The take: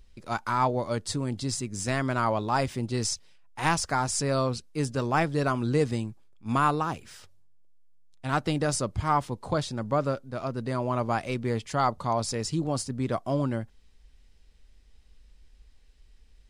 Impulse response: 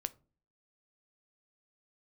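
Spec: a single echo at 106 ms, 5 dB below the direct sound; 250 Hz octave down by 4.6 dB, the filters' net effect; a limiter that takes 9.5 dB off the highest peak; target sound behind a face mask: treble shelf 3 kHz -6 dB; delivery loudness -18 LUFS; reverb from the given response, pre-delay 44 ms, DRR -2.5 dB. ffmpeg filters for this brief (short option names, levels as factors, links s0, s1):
-filter_complex "[0:a]equalizer=f=250:t=o:g=-6,alimiter=limit=0.106:level=0:latency=1,aecho=1:1:106:0.562,asplit=2[s0][s1];[1:a]atrim=start_sample=2205,adelay=44[s2];[s1][s2]afir=irnorm=-1:irlink=0,volume=1.5[s3];[s0][s3]amix=inputs=2:normalize=0,highshelf=f=3000:g=-6,volume=2.66"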